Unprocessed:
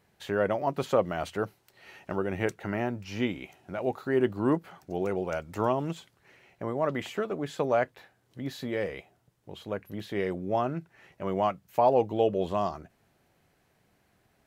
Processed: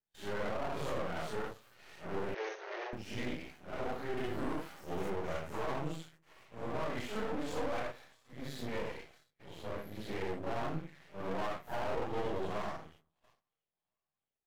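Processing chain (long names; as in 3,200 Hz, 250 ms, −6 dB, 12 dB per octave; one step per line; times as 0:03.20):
random phases in long frames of 200 ms
0:04.17–0:05.10: high-shelf EQ 2,700 Hz +11 dB
0:07.15–0:07.83: comb filter 3.9 ms, depth 93%
brickwall limiter −20 dBFS, peak gain reduction 9 dB
delay with a high-pass on its return 677 ms, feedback 61%, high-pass 1,900 Hz, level −16.5 dB
soft clipping −25.5 dBFS, distortion −15 dB
noise gate −57 dBFS, range −26 dB
convolution reverb RT60 0.55 s, pre-delay 3 ms, DRR 15 dB
half-wave rectification
0:02.34–0:02.93: linear-phase brick-wall band-pass 340–6,600 Hz
level −1 dB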